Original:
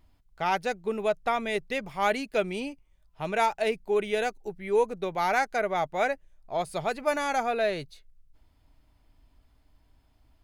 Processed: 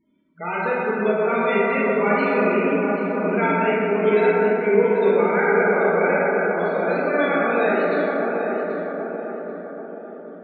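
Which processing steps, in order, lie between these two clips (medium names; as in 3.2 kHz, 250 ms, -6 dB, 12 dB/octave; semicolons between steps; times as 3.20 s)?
peaking EQ 780 Hz -11.5 dB 0.79 oct; FFT band-pass 170–4400 Hz; in parallel at -1.5 dB: compression, threshold -36 dBFS, peak gain reduction 13.5 dB; on the sum: loudest bins only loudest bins 16; filtered feedback delay 784 ms, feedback 51%, low-pass 1.2 kHz, level -4 dB; plate-style reverb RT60 4.4 s, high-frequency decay 0.25×, DRR -8.5 dB; trim +1 dB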